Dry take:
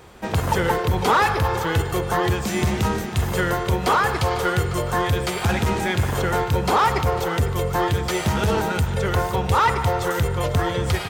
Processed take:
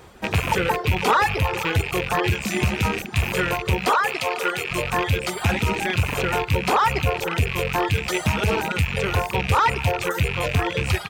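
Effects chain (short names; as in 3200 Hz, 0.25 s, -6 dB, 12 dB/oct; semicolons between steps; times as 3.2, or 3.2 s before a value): rattling part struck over -28 dBFS, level -12 dBFS; reverb removal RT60 0.87 s; 3.9–4.71 HPF 320 Hz 12 dB/oct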